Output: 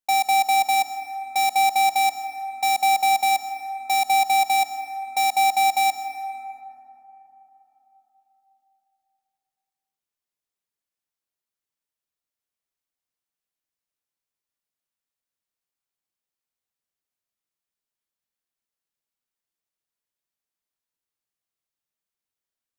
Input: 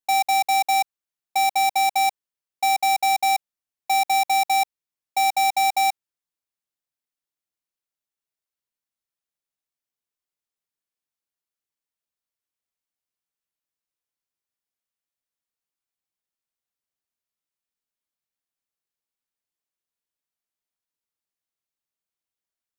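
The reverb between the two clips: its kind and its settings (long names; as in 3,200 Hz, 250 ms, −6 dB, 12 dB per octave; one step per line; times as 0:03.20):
dense smooth reverb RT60 3.9 s, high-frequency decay 0.3×, pre-delay 110 ms, DRR 9.5 dB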